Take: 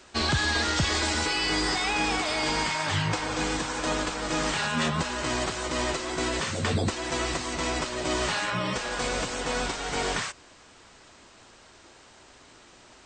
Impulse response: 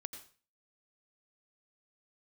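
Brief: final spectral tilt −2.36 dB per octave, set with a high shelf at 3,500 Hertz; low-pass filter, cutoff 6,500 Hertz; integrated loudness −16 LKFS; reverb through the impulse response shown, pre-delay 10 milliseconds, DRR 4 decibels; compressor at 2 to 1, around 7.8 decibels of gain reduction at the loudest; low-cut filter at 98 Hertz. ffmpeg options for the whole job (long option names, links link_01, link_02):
-filter_complex "[0:a]highpass=98,lowpass=6500,highshelf=frequency=3500:gain=8,acompressor=threshold=-35dB:ratio=2,asplit=2[link_01][link_02];[1:a]atrim=start_sample=2205,adelay=10[link_03];[link_02][link_03]afir=irnorm=-1:irlink=0,volume=-1dB[link_04];[link_01][link_04]amix=inputs=2:normalize=0,volume=14.5dB"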